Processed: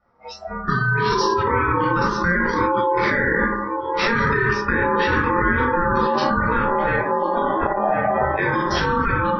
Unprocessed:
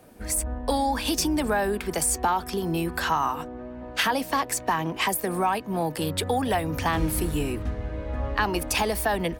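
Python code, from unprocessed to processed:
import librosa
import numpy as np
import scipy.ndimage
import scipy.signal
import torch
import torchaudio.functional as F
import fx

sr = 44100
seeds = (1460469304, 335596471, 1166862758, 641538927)

p1 = fx.high_shelf_res(x, sr, hz=1700.0, db=-11.5, q=1.5)
p2 = fx.echo_feedback(p1, sr, ms=1050, feedback_pct=26, wet_db=-12)
p3 = fx.room_shoebox(p2, sr, seeds[0], volume_m3=1000.0, walls='furnished', distance_m=6.3)
p4 = p3 * np.sin(2.0 * np.pi * 700.0 * np.arange(len(p3)) / sr)
p5 = scipy.signal.sosfilt(scipy.signal.cheby1(8, 1.0, 5700.0, 'lowpass', fs=sr, output='sos'), p4)
p6 = fx.bass_treble(p5, sr, bass_db=0, treble_db=12)
p7 = fx.over_compress(p6, sr, threshold_db=-23.0, ratio=-0.5)
p8 = p6 + F.gain(torch.from_numpy(p7), 2.0).numpy()
p9 = fx.noise_reduce_blind(p8, sr, reduce_db=22)
y = F.gain(torch.from_numpy(p9), -3.5).numpy()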